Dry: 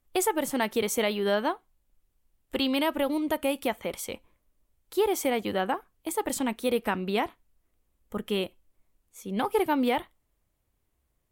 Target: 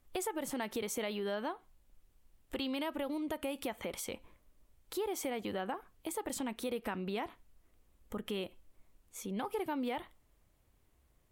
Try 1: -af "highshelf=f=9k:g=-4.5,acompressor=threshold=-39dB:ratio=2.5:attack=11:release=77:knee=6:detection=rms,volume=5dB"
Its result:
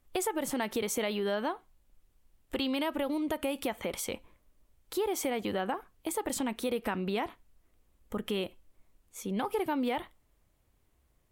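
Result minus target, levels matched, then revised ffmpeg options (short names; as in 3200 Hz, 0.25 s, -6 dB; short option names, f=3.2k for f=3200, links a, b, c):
compressor: peak gain reduction -5.5 dB
-af "highshelf=f=9k:g=-4.5,acompressor=threshold=-48dB:ratio=2.5:attack=11:release=77:knee=6:detection=rms,volume=5dB"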